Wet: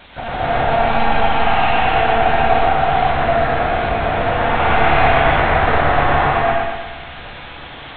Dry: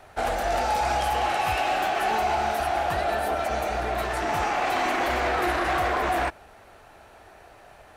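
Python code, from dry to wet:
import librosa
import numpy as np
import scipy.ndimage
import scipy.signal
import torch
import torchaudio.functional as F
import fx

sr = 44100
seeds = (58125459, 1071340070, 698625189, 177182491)

p1 = fx.quant_dither(x, sr, seeds[0], bits=6, dither='triangular')
p2 = fx.lpc_monotone(p1, sr, seeds[1], pitch_hz=230.0, order=10)
p3 = fx.doubler(p2, sr, ms=27.0, db=-2, at=(4.41, 5.12))
p4 = p3 + fx.echo_bbd(p3, sr, ms=118, stages=2048, feedback_pct=51, wet_db=-3.0, dry=0)
p5 = fx.rev_gated(p4, sr, seeds[2], gate_ms=320, shape='rising', drr_db=-8.0)
y = p5 * 10.0 ** (-1.0 / 20.0)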